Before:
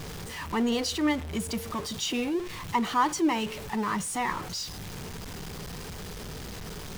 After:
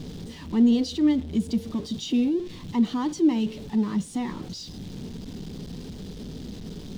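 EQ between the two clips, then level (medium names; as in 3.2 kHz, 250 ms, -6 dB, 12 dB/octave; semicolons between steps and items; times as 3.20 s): FFT filter 120 Hz 0 dB, 250 Hz +10 dB, 360 Hz +2 dB, 1.2 kHz -13 dB, 2.4 kHz -10 dB, 3.6 kHz -1 dB, 12 kHz -14 dB; 0.0 dB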